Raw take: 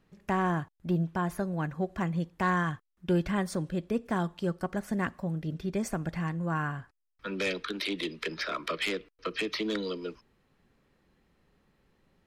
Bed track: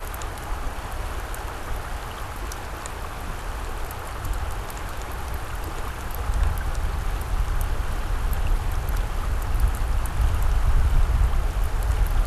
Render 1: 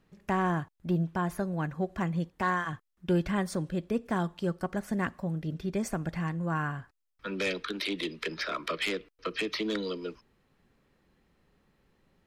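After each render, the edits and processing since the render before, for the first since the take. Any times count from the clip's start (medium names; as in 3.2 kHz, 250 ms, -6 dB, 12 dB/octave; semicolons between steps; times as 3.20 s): 2.30–2.73 s: comb of notches 170 Hz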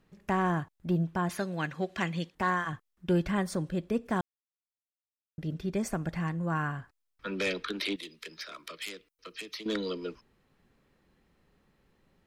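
1.29–2.35 s: frequency weighting D; 4.21–5.38 s: mute; 7.96–9.66 s: pre-emphasis filter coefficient 0.8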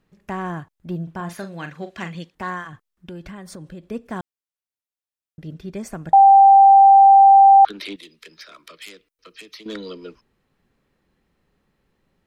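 1.03–2.15 s: doubling 41 ms -9 dB; 2.66–3.90 s: compression, threshold -33 dBFS; 6.13–7.65 s: bleep 786 Hz -6 dBFS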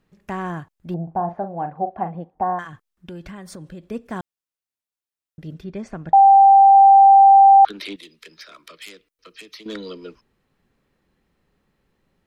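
0.94–2.59 s: resonant low-pass 770 Hz, resonance Q 8.1; 5.64–6.75 s: distance through air 140 m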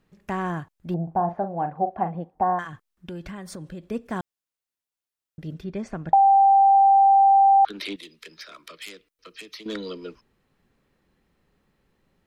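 compression, threshold -14 dBFS, peak gain reduction 6 dB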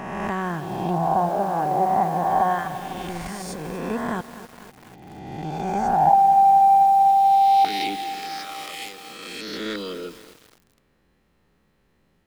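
reverse spectral sustain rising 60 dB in 1.78 s; bit-crushed delay 247 ms, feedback 80%, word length 6-bit, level -12.5 dB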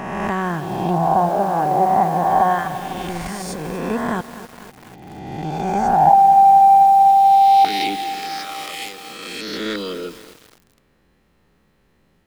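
trim +4.5 dB; peak limiter -1 dBFS, peak gain reduction 0.5 dB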